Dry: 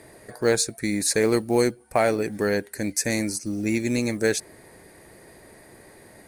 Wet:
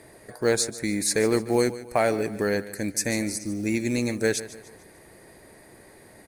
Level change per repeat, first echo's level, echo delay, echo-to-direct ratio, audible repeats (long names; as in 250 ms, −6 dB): −7.5 dB, −15.5 dB, 148 ms, −14.5 dB, 3